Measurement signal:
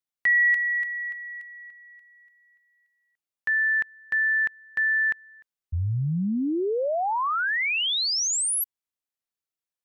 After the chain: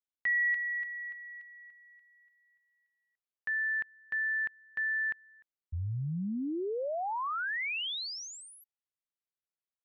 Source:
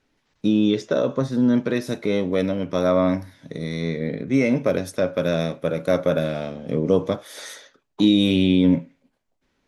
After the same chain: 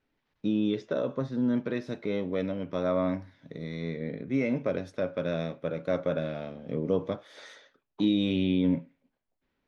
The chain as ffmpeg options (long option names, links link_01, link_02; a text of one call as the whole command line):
ffmpeg -i in.wav -af "lowpass=3800,volume=-8.5dB" out.wav